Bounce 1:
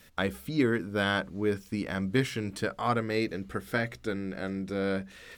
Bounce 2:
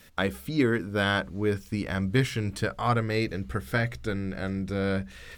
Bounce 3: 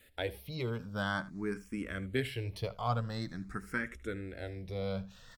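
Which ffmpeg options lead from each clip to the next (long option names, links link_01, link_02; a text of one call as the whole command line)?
ffmpeg -i in.wav -af "asubboost=boost=4:cutoff=130,volume=2.5dB" out.wav
ffmpeg -i in.wav -filter_complex "[0:a]aecho=1:1:78:0.112,asplit=2[link_01][link_02];[link_02]afreqshift=0.47[link_03];[link_01][link_03]amix=inputs=2:normalize=1,volume=-6dB" out.wav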